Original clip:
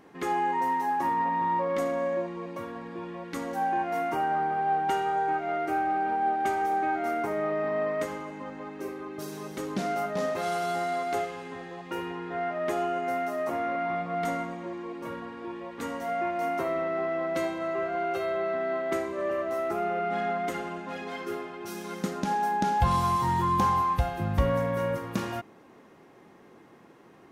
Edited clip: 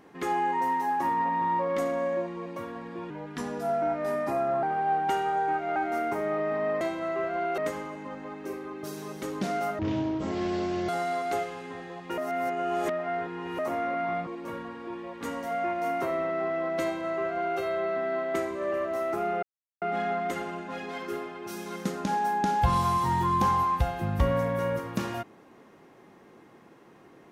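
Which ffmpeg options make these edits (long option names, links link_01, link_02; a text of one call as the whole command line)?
ffmpeg -i in.wav -filter_complex "[0:a]asplit=12[link_01][link_02][link_03][link_04][link_05][link_06][link_07][link_08][link_09][link_10][link_11][link_12];[link_01]atrim=end=3.104[link_13];[link_02]atrim=start=3.1:end=4.43,asetpts=PTS-STARTPTS,asetrate=38367,aresample=44100,atrim=end_sample=67417,asetpts=PTS-STARTPTS[link_14];[link_03]atrim=start=4.426:end=5.562[link_15];[link_04]atrim=start=6.878:end=7.932[link_16];[link_05]atrim=start=17.398:end=18.172[link_17];[link_06]atrim=start=7.928:end=10.144[link_18];[link_07]atrim=start=10.14:end=10.7,asetpts=PTS-STARTPTS,asetrate=22491,aresample=44100[link_19];[link_08]atrim=start=10.696:end=11.992[link_20];[link_09]atrim=start=11.988:end=13.402,asetpts=PTS-STARTPTS,areverse[link_21];[link_10]atrim=start=13.398:end=14.082[link_22];[link_11]atrim=start=14.838:end=20,asetpts=PTS-STARTPTS,afade=type=out:start_time=5.158:duration=0.004:curve=hsin,apad=pad_dur=0.39[link_23];[link_12]atrim=start=20,asetpts=PTS-STARTPTS,afade=type=in:duration=0.004:curve=hsin[link_24];[link_13][link_14]acrossfade=duration=0.004:curve1=hsin:curve2=hsin[link_25];[link_25][link_15]acrossfade=duration=0.004:curve1=hsin:curve2=hsin[link_26];[link_26][link_16]acrossfade=duration=0.004:curve1=hsin:curve2=hsin[link_27];[link_27][link_17]acrossfade=duration=0.004:curve1=hsin:curve2=hsin[link_28];[link_28][link_18]acrossfade=duration=0.004:curve1=hsin:curve2=hsin[link_29];[link_29][link_19]acrossfade=duration=0.004:curve1=hsin:curve2=hsin[link_30];[link_30][link_20]acrossfade=duration=0.004:curve1=hsin:curve2=hsin[link_31];[link_31][link_21]acrossfade=duration=0.004:curve1=hsin:curve2=hsin[link_32];[link_32][link_22]acrossfade=duration=0.004:curve1=hsin:curve2=hsin[link_33];[link_23][link_24]concat=n=2:v=0:a=1[link_34];[link_33][link_34]acrossfade=duration=0.004:curve1=hsin:curve2=hsin" out.wav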